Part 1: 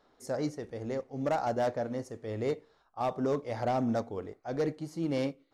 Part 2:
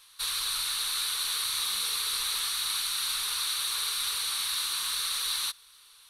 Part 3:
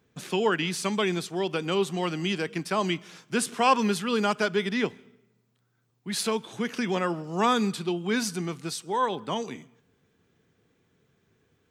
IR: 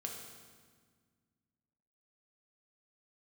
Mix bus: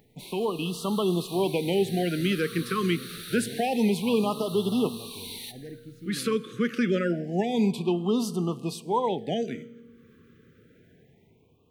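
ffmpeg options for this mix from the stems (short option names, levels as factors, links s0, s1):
-filter_complex "[0:a]equalizer=f=590:w=1.5:g=-14.5,acompressor=threshold=0.0224:ratio=6,adelay=1050,volume=0.266,asplit=2[s0][s1];[s1]volume=0.355[s2];[1:a]acrusher=bits=8:dc=4:mix=0:aa=0.000001,volume=0.299,asplit=2[s3][s4];[s4]volume=0.447[s5];[2:a]acompressor=mode=upward:threshold=0.00282:ratio=2.5,alimiter=limit=0.133:level=0:latency=1:release=23,volume=0.668,asplit=3[s6][s7][s8];[s7]volume=0.211[s9];[s8]apad=whole_len=268967[s10];[s3][s10]sidechaincompress=threshold=0.02:ratio=8:attack=16:release=636[s11];[3:a]atrim=start_sample=2205[s12];[s2][s5][s9]amix=inputs=3:normalize=0[s13];[s13][s12]afir=irnorm=-1:irlink=0[s14];[s0][s11][s6][s14]amix=inputs=4:normalize=0,equalizer=f=6600:w=0.6:g=-11,dynaudnorm=f=130:g=11:m=2,afftfilt=real='re*(1-between(b*sr/1024,750*pow(1900/750,0.5+0.5*sin(2*PI*0.27*pts/sr))/1.41,750*pow(1900/750,0.5+0.5*sin(2*PI*0.27*pts/sr))*1.41))':imag='im*(1-between(b*sr/1024,750*pow(1900/750,0.5+0.5*sin(2*PI*0.27*pts/sr))/1.41,750*pow(1900/750,0.5+0.5*sin(2*PI*0.27*pts/sr))*1.41))':win_size=1024:overlap=0.75"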